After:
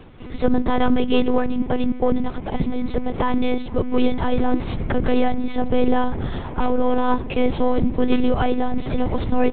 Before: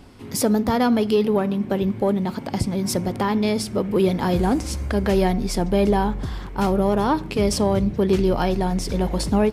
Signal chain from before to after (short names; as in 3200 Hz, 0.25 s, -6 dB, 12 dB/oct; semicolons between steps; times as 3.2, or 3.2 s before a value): tape echo 0.461 s, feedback 82%, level -19 dB, low-pass 1200 Hz; monotone LPC vocoder at 8 kHz 250 Hz; gain +2.5 dB